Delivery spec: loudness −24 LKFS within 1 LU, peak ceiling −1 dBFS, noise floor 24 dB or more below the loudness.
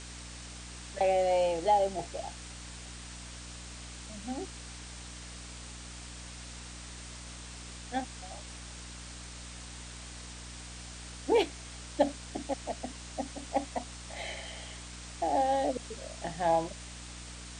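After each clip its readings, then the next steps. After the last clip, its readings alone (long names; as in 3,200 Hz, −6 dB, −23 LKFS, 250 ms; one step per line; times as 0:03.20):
mains hum 60 Hz; hum harmonics up to 300 Hz; level of the hum −45 dBFS; background noise floor −45 dBFS; target noise floor −60 dBFS; integrated loudness −35.5 LKFS; sample peak −13.5 dBFS; target loudness −24.0 LKFS
→ hum removal 60 Hz, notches 5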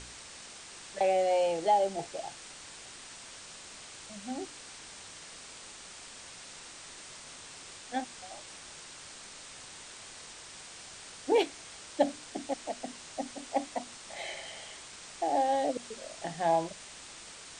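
mains hum none found; background noise floor −49 dBFS; target noise floor −60 dBFS
→ broadband denoise 11 dB, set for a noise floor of −49 dBFS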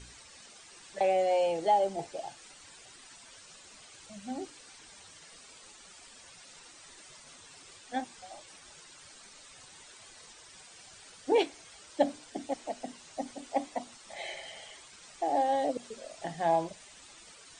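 background noise floor −54 dBFS; target noise floor −57 dBFS
→ broadband denoise 6 dB, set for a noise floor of −54 dBFS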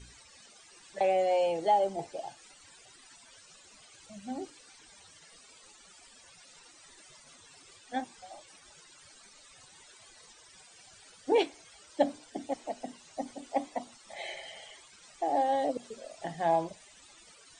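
background noise floor −57 dBFS; integrated loudness −32.5 LKFS; sample peak −13.5 dBFS; target loudness −24.0 LKFS
→ level +8.5 dB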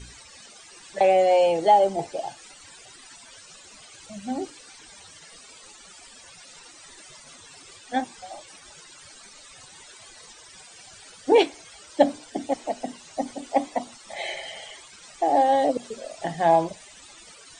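integrated loudness −24.0 LKFS; sample peak −5.0 dBFS; background noise floor −49 dBFS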